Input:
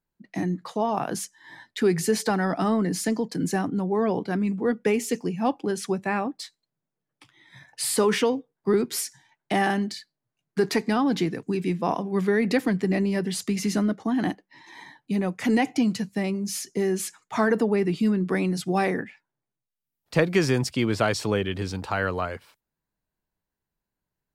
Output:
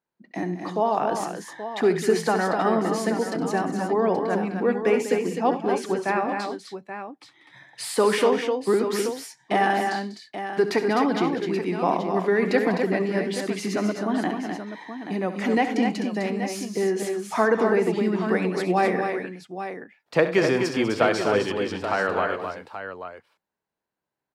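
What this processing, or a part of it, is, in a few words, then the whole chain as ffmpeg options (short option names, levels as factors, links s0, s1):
filter by subtraction: -filter_complex "[0:a]asplit=2[s0][s1];[s1]lowpass=550,volume=-1[s2];[s0][s2]amix=inputs=2:normalize=0,lowpass=f=3300:p=1,aecho=1:1:67|96|195|255|279|829:0.237|0.15|0.224|0.501|0.119|0.299,volume=1.19"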